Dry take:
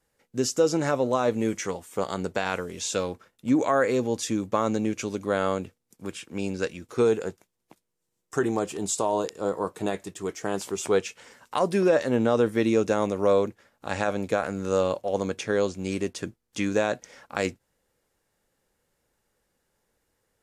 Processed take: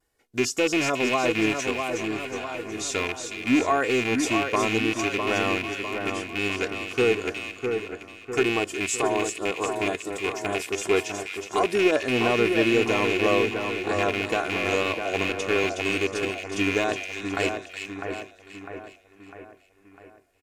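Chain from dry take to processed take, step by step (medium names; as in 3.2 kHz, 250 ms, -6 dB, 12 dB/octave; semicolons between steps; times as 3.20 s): rattle on loud lows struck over -30 dBFS, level -15 dBFS; comb 2.8 ms, depth 62%; vibrato 1.9 Hz 53 cents; 1.88–2.71 s: feedback comb 130 Hz, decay 0.24 s, harmonics all, mix 90%; on a send: two-band feedback delay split 1.9 kHz, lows 652 ms, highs 367 ms, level -5.5 dB; 14.83–15.64 s: on the sum: three bands expanded up and down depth 40%; trim -1.5 dB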